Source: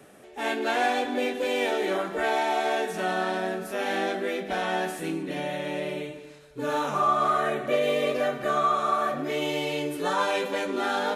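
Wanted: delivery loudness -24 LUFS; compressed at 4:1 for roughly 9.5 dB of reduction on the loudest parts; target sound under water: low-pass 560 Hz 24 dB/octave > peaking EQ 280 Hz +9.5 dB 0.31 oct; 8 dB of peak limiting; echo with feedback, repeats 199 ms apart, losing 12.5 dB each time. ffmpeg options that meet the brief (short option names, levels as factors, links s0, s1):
-af "acompressor=threshold=0.0282:ratio=4,alimiter=level_in=1.5:limit=0.0631:level=0:latency=1,volume=0.668,lowpass=f=560:w=0.5412,lowpass=f=560:w=1.3066,equalizer=f=280:t=o:w=0.31:g=9.5,aecho=1:1:199|398|597:0.237|0.0569|0.0137,volume=4.47"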